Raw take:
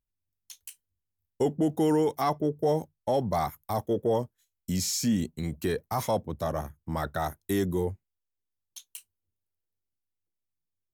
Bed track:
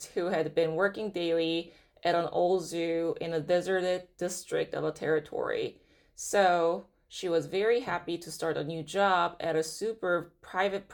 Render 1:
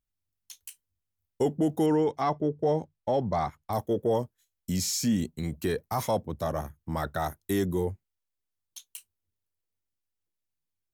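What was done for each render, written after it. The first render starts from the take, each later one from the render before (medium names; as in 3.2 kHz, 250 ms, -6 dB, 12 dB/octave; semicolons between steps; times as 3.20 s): 1.86–3.73 s: distance through air 110 m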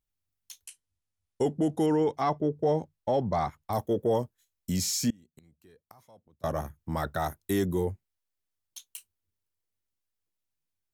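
0.64–2.01 s: Chebyshev low-pass 11 kHz, order 4; 5.10–6.44 s: inverted gate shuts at -32 dBFS, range -29 dB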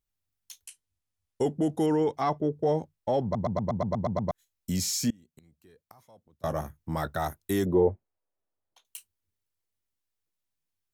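3.23 s: stutter in place 0.12 s, 9 plays; 6.45–7.08 s: doubling 19 ms -13.5 dB; 7.66–8.85 s: FFT filter 150 Hz 0 dB, 610 Hz +11 dB, 8.1 kHz -25 dB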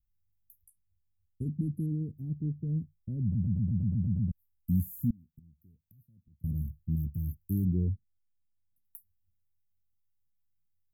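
inverse Chebyshev band-stop 830–4700 Hz, stop band 70 dB; bass shelf 110 Hz +10.5 dB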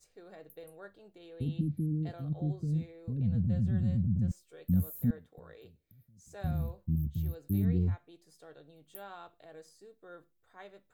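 add bed track -22 dB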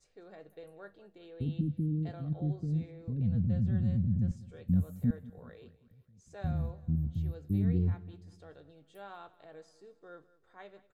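distance through air 74 m; feedback delay 193 ms, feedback 50%, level -19.5 dB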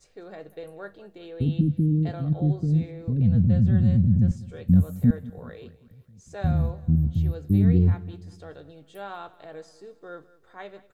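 trim +10 dB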